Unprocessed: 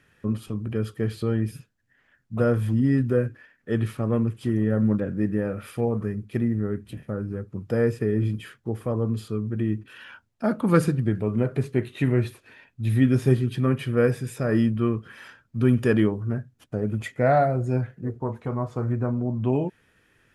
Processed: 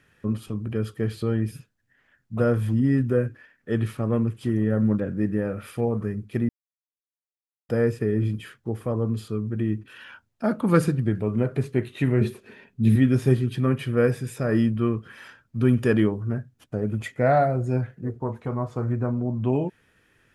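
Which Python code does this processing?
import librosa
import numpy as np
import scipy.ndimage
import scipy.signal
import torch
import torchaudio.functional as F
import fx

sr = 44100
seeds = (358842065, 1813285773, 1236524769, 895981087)

y = fx.peak_eq(x, sr, hz=4300.0, db=-5.5, octaves=0.37, at=(2.79, 3.27))
y = fx.small_body(y, sr, hz=(210.0, 390.0), ring_ms=45, db=15, at=(12.21, 12.96))
y = fx.edit(y, sr, fx.silence(start_s=6.49, length_s=1.2), tone=tone)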